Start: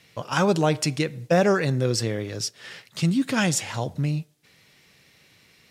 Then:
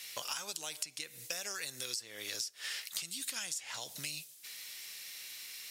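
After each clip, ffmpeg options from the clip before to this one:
ffmpeg -i in.wav -filter_complex "[0:a]acrossover=split=2300|6800[link_01][link_02][link_03];[link_01]acompressor=threshold=-34dB:ratio=4[link_04];[link_02]acompressor=threshold=-43dB:ratio=4[link_05];[link_03]acompressor=threshold=-48dB:ratio=4[link_06];[link_04][link_05][link_06]amix=inputs=3:normalize=0,aderivative,acompressor=threshold=-52dB:ratio=10,volume=16dB" out.wav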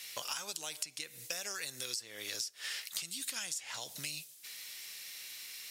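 ffmpeg -i in.wav -af anull out.wav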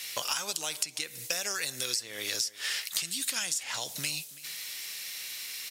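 ffmpeg -i in.wav -af "aecho=1:1:330:0.1,volume=7.5dB" out.wav

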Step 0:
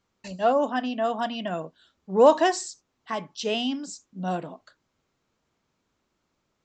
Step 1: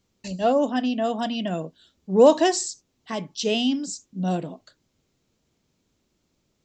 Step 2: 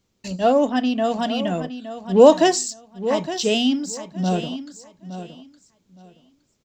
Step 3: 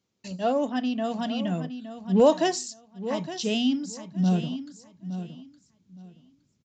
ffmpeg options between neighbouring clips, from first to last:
ffmpeg -i in.wav -af "equalizer=frequency=1200:width_type=o:width=2:gain=-11.5,volume=7dB" out.wav
ffmpeg -i in.wav -filter_complex "[0:a]asplit=2[link_01][link_02];[link_02]aeval=exprs='sgn(val(0))*max(abs(val(0))-0.0141,0)':channel_layout=same,volume=-9dB[link_03];[link_01][link_03]amix=inputs=2:normalize=0,aecho=1:1:865|1730|2595:0.251|0.0502|0.01,volume=1dB" out.wav
ffmpeg -i in.wav -af "highpass=120,asubboost=boost=7.5:cutoff=200,aresample=16000,aresample=44100,volume=-7dB" out.wav

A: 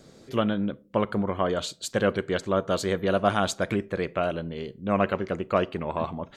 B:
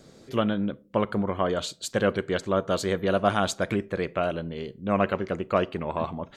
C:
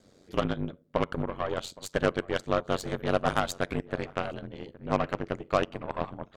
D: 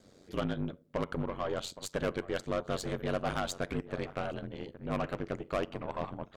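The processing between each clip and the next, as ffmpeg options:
ffmpeg -i in.wav -af anull out.wav
ffmpeg -i in.wav -filter_complex "[0:a]aeval=exprs='val(0)*sin(2*PI*46*n/s)':channel_layout=same,aeval=exprs='0.316*(cos(1*acos(clip(val(0)/0.316,-1,1)))-cos(1*PI/2))+0.02*(cos(7*acos(clip(val(0)/0.316,-1,1)))-cos(7*PI/2))+0.0178*(cos(8*acos(clip(val(0)/0.316,-1,1)))-cos(8*PI/2))':channel_layout=same,asplit=2[link_01][link_02];[link_02]adelay=816.3,volume=-21dB,highshelf=frequency=4000:gain=-18.4[link_03];[link_01][link_03]amix=inputs=2:normalize=0" out.wav
ffmpeg -i in.wav -af "asoftclip=type=tanh:threshold=-24.5dB" out.wav

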